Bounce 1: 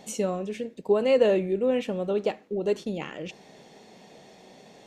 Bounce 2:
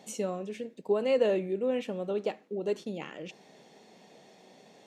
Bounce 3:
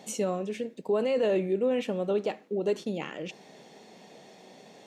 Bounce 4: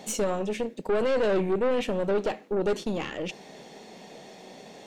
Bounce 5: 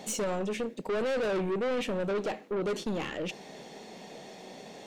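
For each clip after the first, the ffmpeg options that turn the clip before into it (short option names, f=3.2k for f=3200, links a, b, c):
-af "highpass=140,volume=-5dB"
-af "alimiter=limit=-23.5dB:level=0:latency=1:release=15,volume=4.5dB"
-af "aeval=exprs='(tanh(25.1*val(0)+0.45)-tanh(0.45))/25.1':c=same,volume=7dB"
-af "asoftclip=type=tanh:threshold=-26.5dB"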